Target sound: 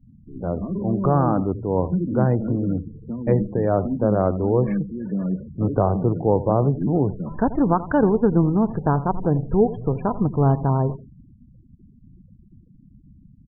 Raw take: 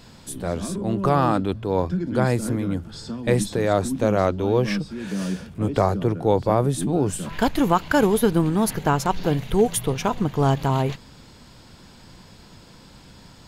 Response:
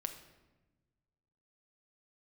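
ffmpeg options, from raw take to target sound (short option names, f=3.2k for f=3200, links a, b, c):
-filter_complex "[0:a]lowpass=1.1k,asplit=2[a][b];[b]aecho=0:1:85|170|255:0.168|0.047|0.0132[c];[a][c]amix=inputs=2:normalize=0,afftfilt=real='re*gte(hypot(re,im),0.0178)':imag='im*gte(hypot(re,im),0.0178)':win_size=1024:overlap=0.75,adynamicequalizer=threshold=0.02:dfrequency=150:dqfactor=0.92:tfrequency=150:tqfactor=0.92:attack=5:release=100:ratio=0.375:range=1.5:mode=boostabove:tftype=bell"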